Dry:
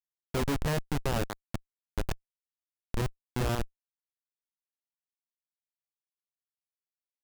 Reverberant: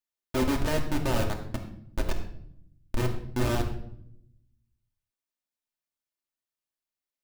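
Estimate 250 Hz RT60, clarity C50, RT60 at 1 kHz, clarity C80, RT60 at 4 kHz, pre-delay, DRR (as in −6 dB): 1.2 s, 8.0 dB, 0.60 s, 11.0 dB, 0.55 s, 3 ms, 0.0 dB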